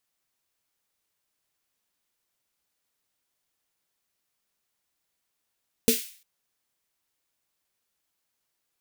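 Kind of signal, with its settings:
synth snare length 0.35 s, tones 240 Hz, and 450 Hz, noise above 2,200 Hz, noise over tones −4 dB, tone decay 0.16 s, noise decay 0.47 s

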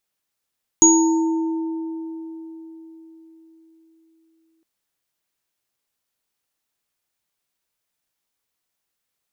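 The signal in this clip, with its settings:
inharmonic partials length 3.81 s, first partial 325 Hz, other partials 905/6,710 Hz, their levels −8.5/5 dB, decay 4.52 s, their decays 2.69/0.63 s, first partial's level −12 dB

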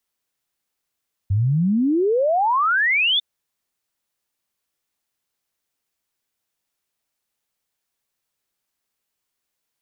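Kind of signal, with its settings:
exponential sine sweep 93 Hz → 3,600 Hz 1.90 s −15.5 dBFS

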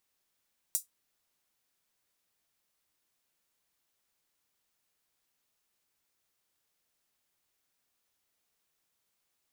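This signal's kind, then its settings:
closed synth hi-hat, high-pass 7,600 Hz, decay 0.14 s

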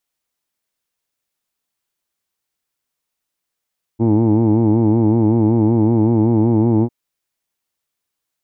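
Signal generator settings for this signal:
vowel by formant synthesis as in who'd, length 2.90 s, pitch 110 Hz, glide +0.5 semitones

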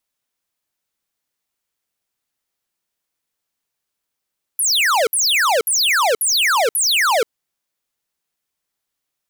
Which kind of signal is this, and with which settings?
repeated falling chirps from 12,000 Hz, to 420 Hz, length 0.48 s square, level −15.5 dB, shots 5, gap 0.06 s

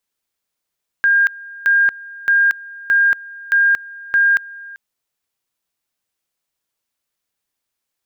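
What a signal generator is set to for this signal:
tone at two levels in turn 1,610 Hz −10 dBFS, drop 21.5 dB, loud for 0.23 s, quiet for 0.39 s, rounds 6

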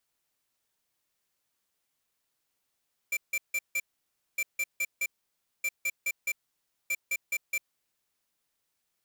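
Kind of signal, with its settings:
beeps in groups square 2,350 Hz, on 0.05 s, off 0.16 s, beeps 4, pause 0.58 s, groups 4, −29 dBFS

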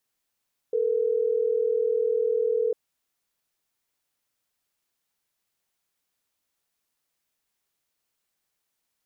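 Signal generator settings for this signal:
call progress tone ringback tone, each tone −24 dBFS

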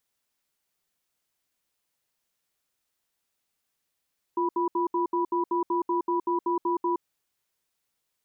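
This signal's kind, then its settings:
tone pair in a cadence 348 Hz, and 984 Hz, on 0.12 s, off 0.07 s, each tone −25.5 dBFS 2.61 s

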